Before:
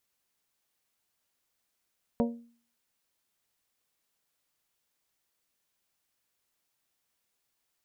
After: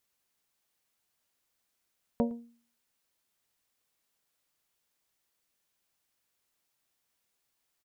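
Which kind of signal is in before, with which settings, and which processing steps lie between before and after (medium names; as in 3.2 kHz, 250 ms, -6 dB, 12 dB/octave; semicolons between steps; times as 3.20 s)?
glass hit bell, lowest mode 235 Hz, decay 0.47 s, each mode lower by 3.5 dB, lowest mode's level -22 dB
echo from a far wall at 19 m, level -23 dB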